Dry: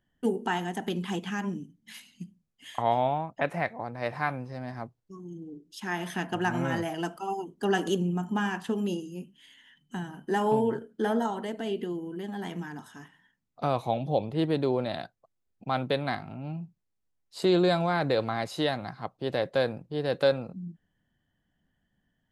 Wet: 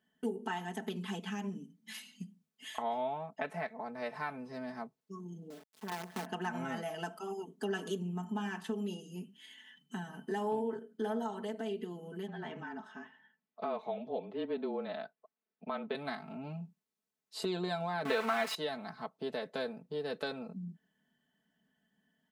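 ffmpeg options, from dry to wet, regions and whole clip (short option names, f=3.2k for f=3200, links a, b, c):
-filter_complex "[0:a]asettb=1/sr,asplit=3[a][b][c];[a]atrim=end=5.504[d];[b]atrim=start=5.5:end=6.26,asetpts=PTS-STARTPTS,afade=t=in:d=0.004:c=qsin,afade=t=out:st=0.756:d=0.004:c=qsin,lowpass=1k,acompressor=mode=upward:threshold=-51dB:ratio=2.5:attack=3.2:release=140:knee=2.83:detection=peak,acrusher=bits=6:dc=4:mix=0:aa=0.000001[e];[c]atrim=start=6.256[f];[d][e]acrossfade=d=0.004:c1=hsin:c2=qsin[g];[g][f]acrossfade=d=0.004:c1=qsin:c2=hsin,asettb=1/sr,asplit=3[h][i][j];[h]atrim=end=12.274[k];[i]atrim=start=12.27:end=15.95,asetpts=PTS-STARTPTS,afade=t=in:d=0.004:c=qsin,afade=t=out:st=3.676:d=0.004:c=qsin,afreqshift=-28,highpass=200,lowpass=2.8k[l];[j]atrim=start=15.946[m];[k][l]acrossfade=d=0.004:c1=hsin:c2=qsin[n];[n][m]acrossfade=d=0.004:c1=qsin:c2=hsin,asettb=1/sr,asplit=3[o][p][q];[o]atrim=end=18.054[r];[p]atrim=start=18.05:end=18.55,asetpts=PTS-STARTPTS,afade=t=in:d=0.004:c=qsin,afade=t=out:st=0.496:d=0.004:c=qsin,aeval=exprs='val(0)+0.5*0.0316*sgn(val(0))':c=same,equalizer=f=1.7k:t=o:w=3:g=12.5,aecho=1:1:4.5:0.48,atrim=end_sample=22050[s];[q]atrim=start=18.546[t];[r][s]acrossfade=d=0.004:c1=hsin:c2=qsin[u];[u][t]acrossfade=d=0.004:c1=qsin:c2=hsin,highpass=180,aecho=1:1:4.6:0.89,acompressor=threshold=-39dB:ratio=2,volume=-2dB"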